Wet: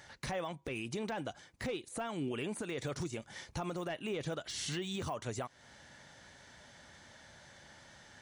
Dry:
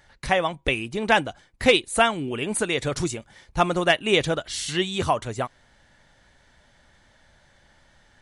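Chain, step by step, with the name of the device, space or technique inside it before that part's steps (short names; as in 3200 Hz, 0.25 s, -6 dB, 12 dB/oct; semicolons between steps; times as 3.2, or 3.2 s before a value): broadcast voice chain (HPF 91 Hz 12 dB/oct; de-esser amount 95%; compressor 3:1, threshold -37 dBFS, peak gain reduction 16 dB; bell 6000 Hz +5 dB 0.68 oct; limiter -31 dBFS, peak gain reduction 8.5 dB); gain +2 dB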